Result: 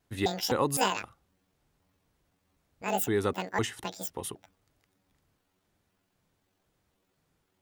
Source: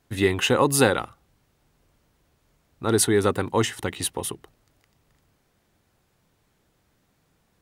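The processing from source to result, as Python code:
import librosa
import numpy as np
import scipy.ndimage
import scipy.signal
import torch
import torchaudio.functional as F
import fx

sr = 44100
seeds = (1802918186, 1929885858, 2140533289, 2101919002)

y = fx.pitch_trill(x, sr, semitones=11.0, every_ms=256)
y = fx.vibrato(y, sr, rate_hz=0.5, depth_cents=6.1)
y = y * librosa.db_to_amplitude(-7.5)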